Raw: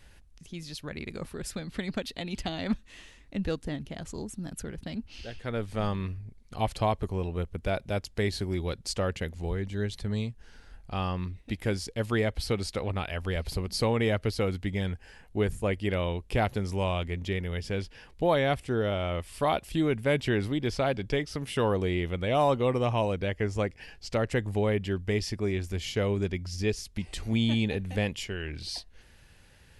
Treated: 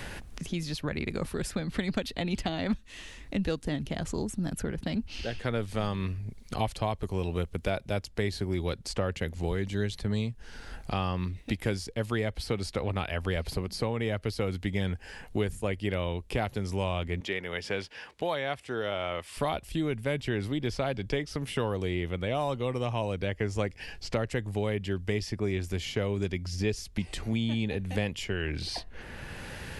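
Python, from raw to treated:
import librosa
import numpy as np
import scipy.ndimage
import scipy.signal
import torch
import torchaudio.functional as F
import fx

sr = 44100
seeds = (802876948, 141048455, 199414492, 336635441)

y = fx.rider(x, sr, range_db=4, speed_s=0.5)
y = fx.weighting(y, sr, curve='A', at=(17.2, 19.37))
y = fx.band_squash(y, sr, depth_pct=70)
y = y * 10.0 ** (-1.5 / 20.0)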